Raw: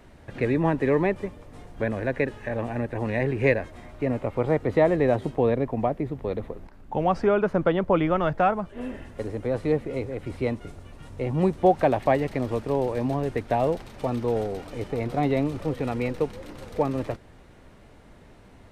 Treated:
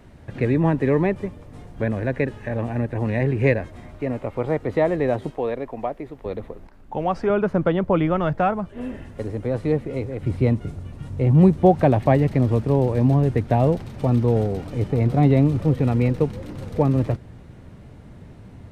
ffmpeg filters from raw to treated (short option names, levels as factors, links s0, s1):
-af "asetnsamples=n=441:p=0,asendcmd='3.98 equalizer g 0;5.3 equalizer g -11;6.26 equalizer g -1;7.3 equalizer g 6;10.21 equalizer g 13.5',equalizer=f=120:t=o:w=2.4:g=7"